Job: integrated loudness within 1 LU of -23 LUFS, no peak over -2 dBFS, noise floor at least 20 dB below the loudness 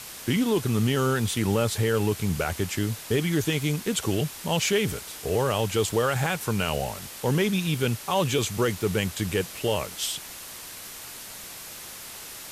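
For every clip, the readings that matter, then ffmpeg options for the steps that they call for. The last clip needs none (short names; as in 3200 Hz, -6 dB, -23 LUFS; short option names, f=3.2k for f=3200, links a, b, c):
noise floor -41 dBFS; noise floor target -46 dBFS; loudness -26.0 LUFS; peak -10.5 dBFS; loudness target -23.0 LUFS
-> -af "afftdn=nr=6:nf=-41"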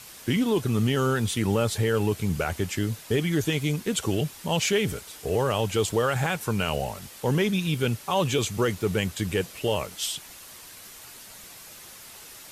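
noise floor -46 dBFS; loudness -26.0 LUFS; peak -11.0 dBFS; loudness target -23.0 LUFS
-> -af "volume=3dB"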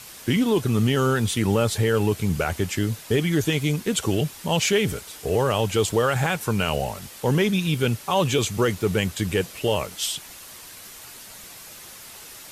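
loudness -23.0 LUFS; peak -8.0 dBFS; noise floor -43 dBFS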